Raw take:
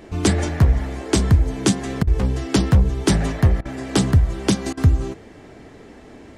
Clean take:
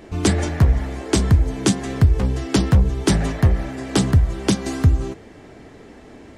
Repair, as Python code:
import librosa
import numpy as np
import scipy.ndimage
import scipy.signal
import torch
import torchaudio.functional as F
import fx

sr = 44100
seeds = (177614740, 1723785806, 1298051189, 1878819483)

y = fx.fix_interpolate(x, sr, at_s=(2.03, 3.61, 4.73), length_ms=41.0)